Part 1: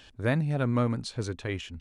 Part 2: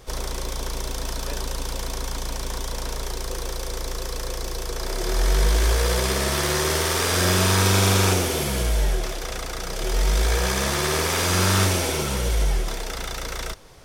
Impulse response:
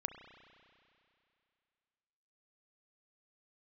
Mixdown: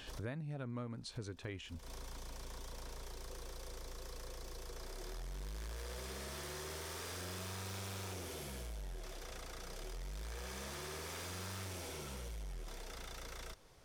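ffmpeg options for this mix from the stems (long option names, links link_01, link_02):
-filter_complex "[0:a]volume=1dB,asplit=2[link_01][link_02];[1:a]asoftclip=type=tanh:threshold=-21dB,volume=-15dB[link_03];[link_02]apad=whole_len=610760[link_04];[link_03][link_04]sidechaincompress=threshold=-41dB:ratio=12:attack=8.8:release=241[link_05];[link_01][link_05]amix=inputs=2:normalize=0,acompressor=threshold=-44dB:ratio=4"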